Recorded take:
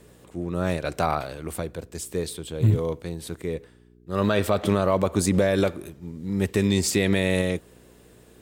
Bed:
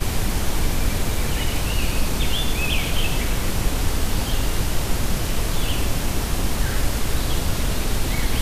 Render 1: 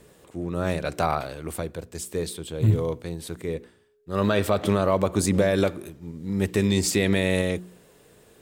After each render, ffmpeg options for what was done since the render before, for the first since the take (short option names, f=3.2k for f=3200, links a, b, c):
-af "bandreject=f=60:t=h:w=4,bandreject=f=120:t=h:w=4,bandreject=f=180:t=h:w=4,bandreject=f=240:t=h:w=4,bandreject=f=300:t=h:w=4,bandreject=f=360:t=h:w=4"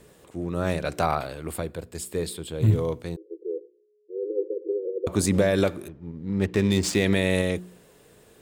-filter_complex "[0:a]asettb=1/sr,asplit=3[a][b][c];[a]atrim=end=1.164[d];[b]atrim=start=1.16:end=2.6,asetpts=PTS-STARTPTS,afade=t=in:d=0.004:c=qsin,afade=t=out:st=1.436:d=0.004:c=qsin,bandreject=f=6k:w=6.3[e];[c]atrim=start=2.596[f];[d][e]acrossfade=d=0.004:c1=hsin:c2=qsin[g];[g][f]acrossfade=d=0.004:c1=qsin:c2=hsin,asettb=1/sr,asplit=3[h][i][j];[h]atrim=end=3.164[k];[i]atrim=start=3.16:end=5.07,asetpts=PTS-STARTPTS,afade=t=in:d=0.004:c=qsin,afade=t=out:st=1.906:d=0.004:c=qsin,asuperpass=centerf=410:order=20:qfactor=2[l];[j]atrim=start=5.066[m];[k][l]acrossfade=d=0.004:c1=hsin:c2=qsin[n];[n][m]acrossfade=d=0.004:c1=qsin:c2=hsin,asettb=1/sr,asplit=3[o][p][q];[o]atrim=end=5.884[r];[p]atrim=start=5.88:end=7.05,asetpts=PTS-STARTPTS,afade=t=in:d=0.004:c=qsin,afade=t=out:st=1.166:d=0.004:c=qsin,adynamicsmooth=sensitivity=6.5:basefreq=2k[s];[q]atrim=start=7.046[t];[r][s]acrossfade=d=0.004:c1=hsin:c2=qsin[u];[u][t]acrossfade=d=0.004:c1=qsin:c2=hsin"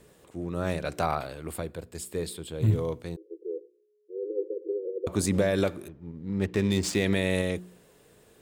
-af "volume=-3.5dB"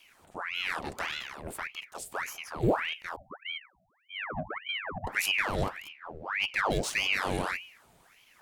-filter_complex "[0:a]acrossover=split=400|4300[a][b][c];[b]asoftclip=type=tanh:threshold=-32dB[d];[a][d][c]amix=inputs=3:normalize=0,aeval=exprs='val(0)*sin(2*PI*1500*n/s+1500*0.85/1.7*sin(2*PI*1.7*n/s))':c=same"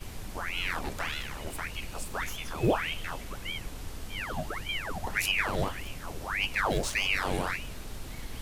-filter_complex "[1:a]volume=-18.5dB[a];[0:a][a]amix=inputs=2:normalize=0"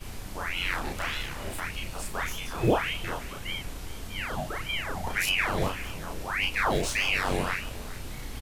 -filter_complex "[0:a]asplit=2[a][b];[b]adelay=33,volume=-2dB[c];[a][c]amix=inputs=2:normalize=0,aecho=1:1:406:0.141"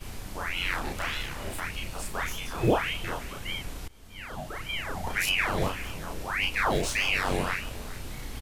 -filter_complex "[0:a]asplit=2[a][b];[a]atrim=end=3.88,asetpts=PTS-STARTPTS,afade=t=out:st=3.876:d=0.004:c=hsin:silence=0.1[c];[b]atrim=start=3.88,asetpts=PTS-STARTPTS,afade=t=in:d=1.47:c=qsin:silence=0.1[d];[c][d]concat=n=2:v=0:a=1"